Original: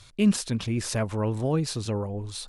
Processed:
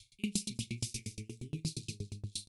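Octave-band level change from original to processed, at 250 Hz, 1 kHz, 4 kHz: -15.5 dB, under -30 dB, -6.5 dB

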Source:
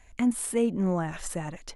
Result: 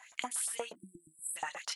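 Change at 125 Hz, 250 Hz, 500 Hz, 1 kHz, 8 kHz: -30.5 dB, -28.0 dB, -16.0 dB, -4.5 dB, -1.0 dB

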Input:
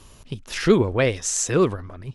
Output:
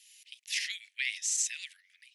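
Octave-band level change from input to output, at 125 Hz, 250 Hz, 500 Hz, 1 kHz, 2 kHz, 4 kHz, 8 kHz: under -40 dB, under -40 dB, under -40 dB, under -40 dB, -6.0 dB, -3.0 dB, -5.5 dB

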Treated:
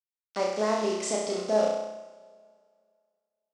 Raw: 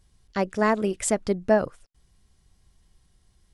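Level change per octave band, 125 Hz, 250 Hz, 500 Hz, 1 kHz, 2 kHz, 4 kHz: under -10 dB, -7.5 dB, -1.5 dB, -3.5 dB, -8.0 dB, +4.5 dB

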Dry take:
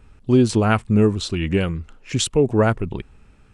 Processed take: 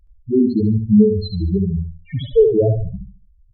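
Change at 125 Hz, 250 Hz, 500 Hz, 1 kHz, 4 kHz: +1.0 dB, +3.0 dB, +4.0 dB, under -15 dB, -9.0 dB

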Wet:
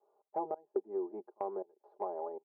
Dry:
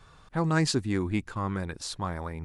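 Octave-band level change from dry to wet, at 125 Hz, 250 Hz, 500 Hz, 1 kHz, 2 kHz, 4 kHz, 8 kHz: under -35 dB, -16.0 dB, -2.5 dB, -5.0 dB, under -30 dB, under -40 dB, under -40 dB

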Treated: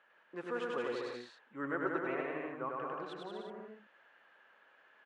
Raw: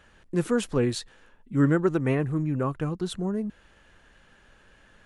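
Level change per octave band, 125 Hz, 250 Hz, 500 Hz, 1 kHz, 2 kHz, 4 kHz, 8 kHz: -28.0 dB, -17.0 dB, -10.0 dB, -3.5 dB, -4.5 dB, -12.5 dB, under -20 dB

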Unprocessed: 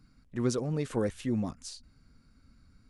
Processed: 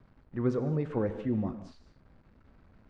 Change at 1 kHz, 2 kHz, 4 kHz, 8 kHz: 0.0 dB, -3.0 dB, under -15 dB, under -20 dB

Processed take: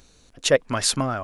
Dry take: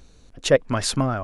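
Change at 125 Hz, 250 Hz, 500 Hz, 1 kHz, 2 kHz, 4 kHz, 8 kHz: -4.5 dB, -3.0 dB, -1.5 dB, 0.0 dB, +1.5 dB, +3.0 dB, +4.5 dB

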